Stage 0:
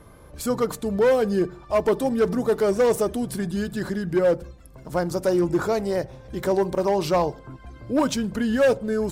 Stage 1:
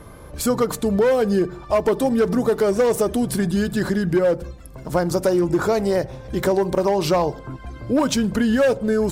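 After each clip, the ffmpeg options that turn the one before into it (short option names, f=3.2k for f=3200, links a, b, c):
-af "acompressor=threshold=-22dB:ratio=6,volume=7dB"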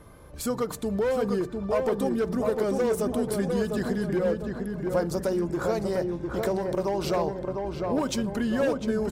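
-filter_complex "[0:a]asplit=2[a][b];[b]adelay=702,lowpass=f=1.7k:p=1,volume=-3.5dB,asplit=2[c][d];[d]adelay=702,lowpass=f=1.7k:p=1,volume=0.5,asplit=2[e][f];[f]adelay=702,lowpass=f=1.7k:p=1,volume=0.5,asplit=2[g][h];[h]adelay=702,lowpass=f=1.7k:p=1,volume=0.5,asplit=2[i][j];[j]adelay=702,lowpass=f=1.7k:p=1,volume=0.5,asplit=2[k][l];[l]adelay=702,lowpass=f=1.7k:p=1,volume=0.5,asplit=2[m][n];[n]adelay=702,lowpass=f=1.7k:p=1,volume=0.5[o];[a][c][e][g][i][k][m][o]amix=inputs=8:normalize=0,volume=-8.5dB"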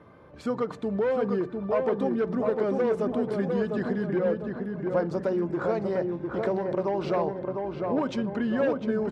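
-af "highpass=130,lowpass=2.6k"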